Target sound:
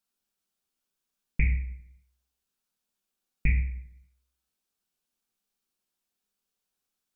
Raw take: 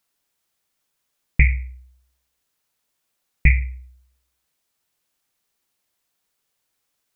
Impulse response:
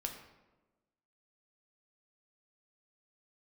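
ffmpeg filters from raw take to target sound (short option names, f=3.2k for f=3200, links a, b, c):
-filter_complex "[0:a]equalizer=f=125:t=o:w=0.33:g=-9,equalizer=f=200:t=o:w=0.33:g=9,equalizer=f=630:t=o:w=0.33:g=-4,equalizer=f=1k:t=o:w=0.33:g=-3,equalizer=f=2k:t=o:w=0.33:g=-7[a];[1:a]atrim=start_sample=2205,asetrate=70560,aresample=44100[b];[a][b]afir=irnorm=-1:irlink=0,volume=-4dB"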